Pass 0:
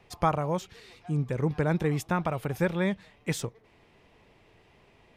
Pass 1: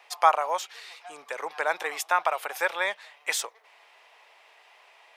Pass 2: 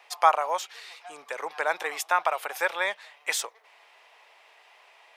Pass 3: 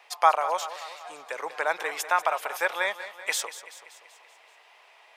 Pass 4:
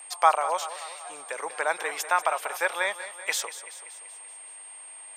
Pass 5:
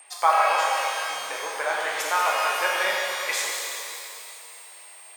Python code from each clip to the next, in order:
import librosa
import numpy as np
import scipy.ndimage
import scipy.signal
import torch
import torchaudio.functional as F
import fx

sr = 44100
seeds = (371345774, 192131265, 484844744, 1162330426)

y1 = scipy.signal.sosfilt(scipy.signal.butter(4, 690.0, 'highpass', fs=sr, output='sos'), x)
y1 = y1 * librosa.db_to_amplitude(8.0)
y2 = y1
y3 = fx.echo_feedback(y2, sr, ms=191, feedback_pct=56, wet_db=-13.5)
y4 = y3 + 10.0 ** (-42.0 / 20.0) * np.sin(2.0 * np.pi * 8600.0 * np.arange(len(y3)) / sr)
y5 = fx.rev_shimmer(y4, sr, seeds[0], rt60_s=2.5, semitones=12, shimmer_db=-8, drr_db=-4.0)
y5 = y5 * librosa.db_to_amplitude(-2.5)